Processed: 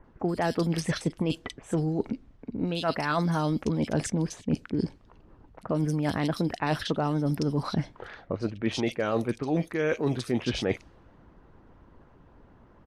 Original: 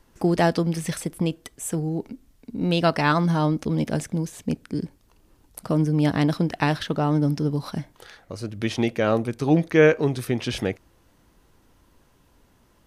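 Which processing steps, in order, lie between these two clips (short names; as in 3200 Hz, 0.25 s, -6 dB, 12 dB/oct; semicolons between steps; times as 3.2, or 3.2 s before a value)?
low-pass opened by the level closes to 1700 Hz, open at -17.5 dBFS; harmonic-percussive split percussive +7 dB; reverse; compressor 12:1, threshold -24 dBFS, peak gain reduction 15.5 dB; reverse; bands offset in time lows, highs 40 ms, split 2600 Hz; gain +1 dB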